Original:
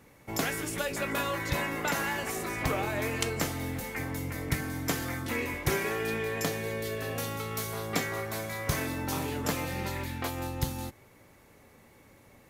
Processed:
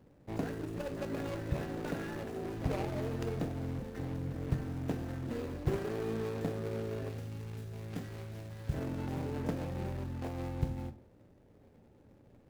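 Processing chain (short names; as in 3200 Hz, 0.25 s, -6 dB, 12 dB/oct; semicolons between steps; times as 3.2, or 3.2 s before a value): median filter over 41 samples; 7.09–8.74 bell 550 Hz -9.5 dB 2.8 oct; on a send: reverb RT60 0.45 s, pre-delay 24 ms, DRR 12 dB; on the sum: gain -1.5 dB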